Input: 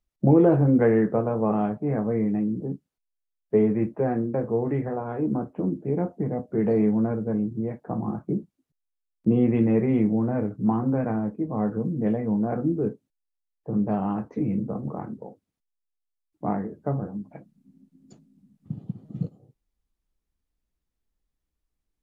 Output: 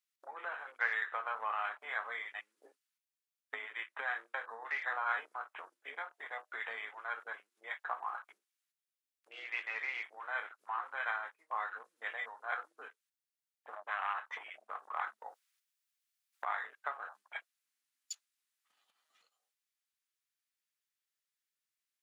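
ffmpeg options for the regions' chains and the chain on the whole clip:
-filter_complex "[0:a]asettb=1/sr,asplit=3[a][b][c];[a]atrim=end=13.734[d];[b]atrim=start=13.73:end=16.45,asetpts=PTS-STARTPTS,afade=t=in:d=0.004:c=qsin,afade=t=out:st=2.716:d=0.004:c=qsin,equalizer=f=220:w=7.8:g=10.5,aeval=exprs='0.355*sin(PI/2*1.78*val(0)/0.355)':c=same[e];[c]atrim=start=16.446[f];[d][e]acrossfade=d=0.004:c1=hsin:c2=qsin[g];[g][f]acrossfade=d=0.004:c1=qsin:c2=hsin,acompressor=threshold=-28dB:ratio=12,highpass=f=1.4k:w=0.5412,highpass=f=1.4k:w=1.3066,afwtdn=0.000398,volume=17.5dB"

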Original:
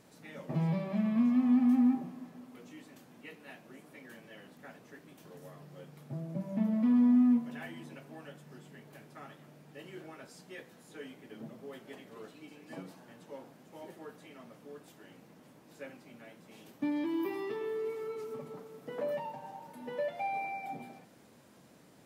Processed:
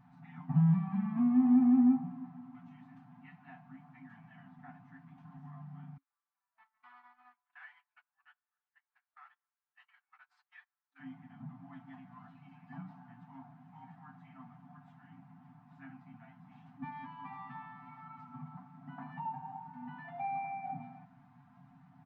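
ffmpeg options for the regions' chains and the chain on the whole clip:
-filter_complex "[0:a]asettb=1/sr,asplit=3[a][b][c];[a]atrim=end=5.974[d];[b]atrim=start=5.97:end=11,asetpts=PTS-STARTPTS,afade=t=in:d=0.004:c=qsin,afade=t=out:st=5.026:d=0.004:c=qsin,highpass=f=1.2k:w=0.5412,highpass=f=1.2k:w=1.3066,equalizer=f=4.2k:t=o:w=0.27:g=7,agate=range=-26dB:threshold=-56dB:ratio=16:release=100:detection=peak[e];[c]atrim=start=10.996[f];[d][e]acrossfade=d=0.004:c1=hsin:c2=qsin[g];[g][f]acrossfade=d=0.004:c1=qsin:c2=hsin,afftfilt=real='re*(1-between(b*sr/4096,270,660))':imag='im*(1-between(b*sr/4096,270,660))':win_size=4096:overlap=0.75,lowpass=1.1k,aecho=1:1:6.8:0.69,volume=1.5dB"

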